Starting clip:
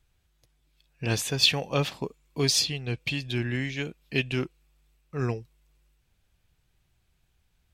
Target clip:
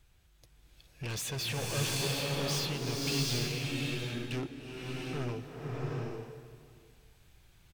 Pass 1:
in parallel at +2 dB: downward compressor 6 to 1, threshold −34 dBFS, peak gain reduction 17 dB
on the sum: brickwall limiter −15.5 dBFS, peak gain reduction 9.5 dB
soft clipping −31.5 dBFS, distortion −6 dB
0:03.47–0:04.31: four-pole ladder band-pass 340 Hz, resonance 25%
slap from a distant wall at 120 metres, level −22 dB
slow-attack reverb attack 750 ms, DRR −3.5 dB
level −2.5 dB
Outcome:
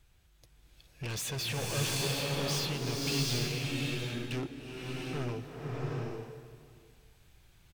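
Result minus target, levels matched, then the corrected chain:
downward compressor: peak gain reduction −6.5 dB
in parallel at +2 dB: downward compressor 6 to 1, threshold −42 dBFS, peak gain reduction 24 dB
on the sum: brickwall limiter −15.5 dBFS, peak gain reduction 8.5 dB
soft clipping −31.5 dBFS, distortion −6 dB
0:03.47–0:04.31: four-pole ladder band-pass 340 Hz, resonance 25%
slap from a distant wall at 120 metres, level −22 dB
slow-attack reverb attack 750 ms, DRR −3.5 dB
level −2.5 dB

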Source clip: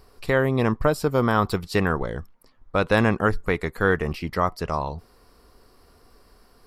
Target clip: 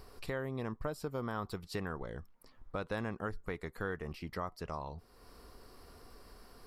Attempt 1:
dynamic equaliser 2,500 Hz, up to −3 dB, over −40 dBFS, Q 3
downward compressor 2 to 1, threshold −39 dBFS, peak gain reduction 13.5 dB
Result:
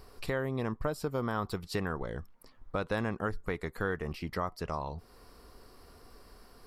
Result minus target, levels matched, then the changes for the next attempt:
downward compressor: peak gain reduction −5 dB
change: downward compressor 2 to 1, threshold −49.5 dBFS, peak gain reduction 19 dB

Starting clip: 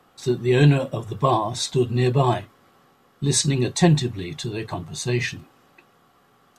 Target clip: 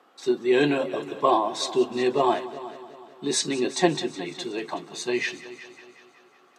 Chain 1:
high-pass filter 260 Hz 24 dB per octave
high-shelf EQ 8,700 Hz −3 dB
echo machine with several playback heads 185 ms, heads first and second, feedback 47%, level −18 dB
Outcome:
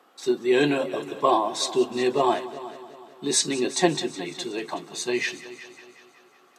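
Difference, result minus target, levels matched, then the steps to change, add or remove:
8,000 Hz band +3.5 dB
change: high-shelf EQ 8,700 Hz −14 dB

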